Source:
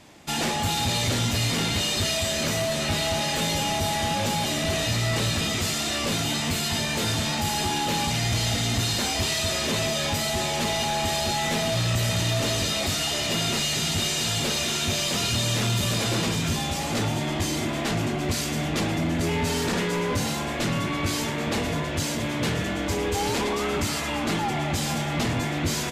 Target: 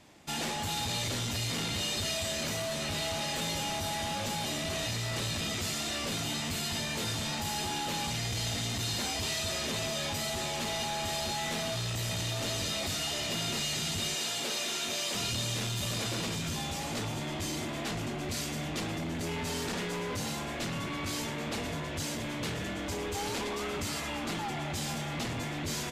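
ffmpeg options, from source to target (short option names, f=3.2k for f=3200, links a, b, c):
-filter_complex "[0:a]asettb=1/sr,asplit=3[a][b][c];[a]atrim=end=14.154[d];[b]atrim=start=14.15:end=15.15,asetpts=PTS-STARTPTS,afade=t=in:d=0.004:c=qsin,afade=t=out:st=0.996:d=0.004:c=qsin,highpass=290[e];[c]atrim=start=15.146[f];[d][e]acrossfade=d=0.004:c1=hsin:c2=qsin[g];[g][f]acrossfade=d=0.004:c1=qsin:c2=hsin,acrossover=split=2500[h][i];[h]asoftclip=type=hard:threshold=-26dB[j];[j][i]amix=inputs=2:normalize=0,volume=-7dB"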